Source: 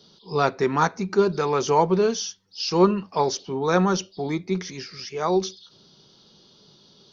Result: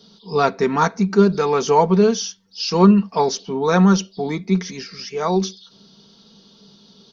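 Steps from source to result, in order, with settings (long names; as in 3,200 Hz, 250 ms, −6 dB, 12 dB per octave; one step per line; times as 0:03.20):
parametric band 200 Hz +8.5 dB 0.21 octaves
comb filter 4.4 ms, depth 43%
level +2.5 dB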